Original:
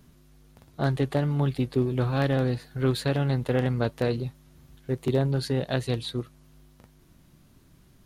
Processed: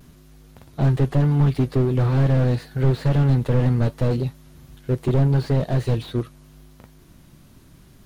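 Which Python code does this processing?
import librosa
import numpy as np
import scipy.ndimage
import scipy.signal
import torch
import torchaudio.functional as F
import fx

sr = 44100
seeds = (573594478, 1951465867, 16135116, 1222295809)

y = fx.vibrato(x, sr, rate_hz=0.77, depth_cents=33.0)
y = fx.slew_limit(y, sr, full_power_hz=18.0)
y = F.gain(torch.from_numpy(y), 7.5).numpy()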